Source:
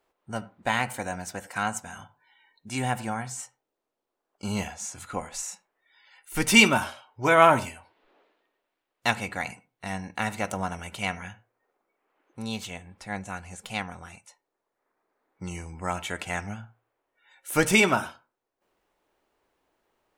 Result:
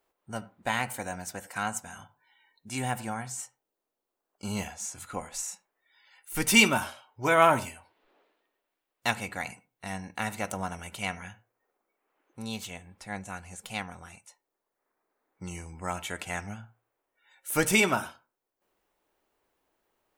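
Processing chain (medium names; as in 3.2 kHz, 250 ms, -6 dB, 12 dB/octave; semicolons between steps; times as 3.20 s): treble shelf 10 kHz +9.5 dB; trim -3.5 dB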